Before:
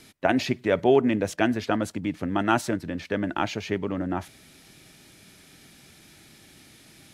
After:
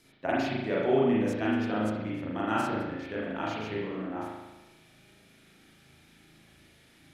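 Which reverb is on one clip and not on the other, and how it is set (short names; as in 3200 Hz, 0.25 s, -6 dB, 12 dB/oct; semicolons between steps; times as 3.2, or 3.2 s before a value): spring tank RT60 1.1 s, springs 37 ms, chirp 30 ms, DRR -6.5 dB; gain -12 dB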